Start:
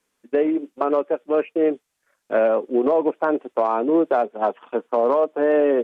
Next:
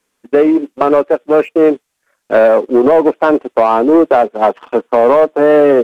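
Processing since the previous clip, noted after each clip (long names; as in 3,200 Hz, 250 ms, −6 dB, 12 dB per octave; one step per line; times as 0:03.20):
leveller curve on the samples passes 1
level +7.5 dB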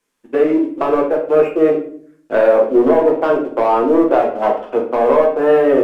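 rectangular room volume 65 cubic metres, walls mixed, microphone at 0.75 metres
level −7 dB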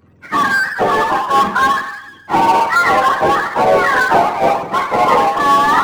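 frequency axis turned over on the octave scale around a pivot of 710 Hz
power curve on the samples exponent 0.7
harmonic and percussive parts rebalanced percussive +6 dB
level −1.5 dB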